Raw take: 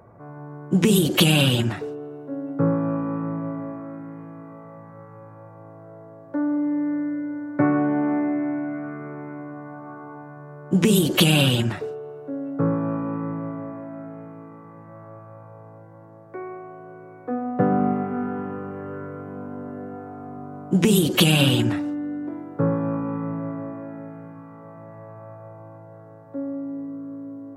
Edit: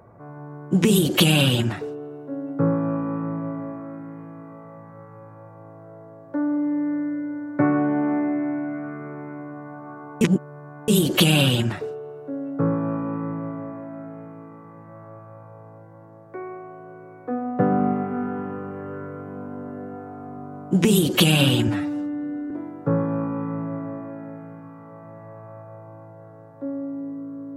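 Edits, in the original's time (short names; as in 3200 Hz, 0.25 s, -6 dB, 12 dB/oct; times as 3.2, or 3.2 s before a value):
10.21–10.88 reverse
21.68–22.23 stretch 1.5×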